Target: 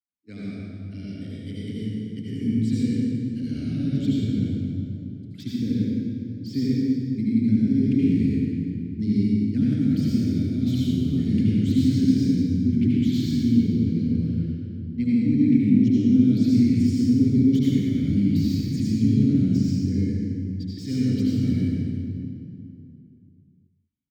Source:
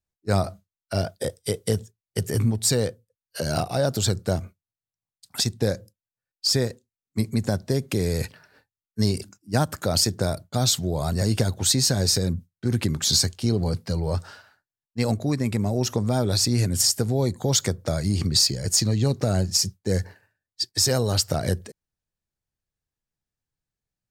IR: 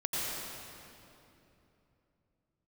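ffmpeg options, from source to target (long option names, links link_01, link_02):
-filter_complex "[0:a]asplit=3[link_01][link_02][link_03];[link_01]bandpass=frequency=270:width_type=q:width=8,volume=0dB[link_04];[link_02]bandpass=frequency=2290:width_type=q:width=8,volume=-6dB[link_05];[link_03]bandpass=frequency=3010:width_type=q:width=8,volume=-9dB[link_06];[link_04][link_05][link_06]amix=inputs=3:normalize=0,acrossover=split=180|3000[link_07][link_08][link_09];[link_07]aecho=1:1:155:0.631[link_10];[link_09]aeval=exprs='0.0112*(abs(mod(val(0)/0.0112+3,4)-2)-1)':channel_layout=same[link_11];[link_10][link_08][link_11]amix=inputs=3:normalize=0[link_12];[1:a]atrim=start_sample=2205,asetrate=52920,aresample=44100[link_13];[link_12][link_13]afir=irnorm=-1:irlink=0,asubboost=boost=8:cutoff=230"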